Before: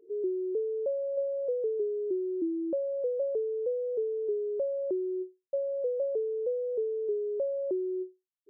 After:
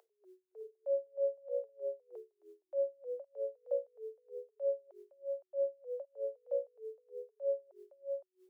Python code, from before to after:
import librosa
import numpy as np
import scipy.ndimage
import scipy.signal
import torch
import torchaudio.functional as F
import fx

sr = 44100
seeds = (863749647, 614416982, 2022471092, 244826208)

p1 = scipy.signal.sosfilt(scipy.signal.butter(8, 640.0, 'highpass', fs=sr, output='sos'), x)
p2 = p1 + fx.echo_single(p1, sr, ms=514, db=-4.0, dry=0)
p3 = p2 * 10.0 ** (-35 * (0.5 - 0.5 * np.cos(2.0 * np.pi * 3.2 * np.arange(len(p2)) / sr)) / 20.0)
y = p3 * librosa.db_to_amplitude(12.5)